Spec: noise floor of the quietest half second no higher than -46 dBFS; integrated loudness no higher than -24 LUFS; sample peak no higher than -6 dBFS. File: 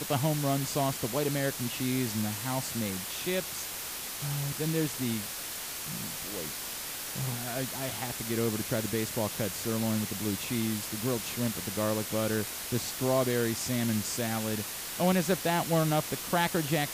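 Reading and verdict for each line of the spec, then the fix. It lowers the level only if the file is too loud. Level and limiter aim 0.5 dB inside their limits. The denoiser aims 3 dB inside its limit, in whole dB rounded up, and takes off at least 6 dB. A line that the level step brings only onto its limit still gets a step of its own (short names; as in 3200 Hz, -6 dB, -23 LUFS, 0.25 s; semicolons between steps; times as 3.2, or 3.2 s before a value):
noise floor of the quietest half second -38 dBFS: fail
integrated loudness -30.5 LUFS: OK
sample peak -13.0 dBFS: OK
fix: denoiser 11 dB, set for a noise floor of -38 dBFS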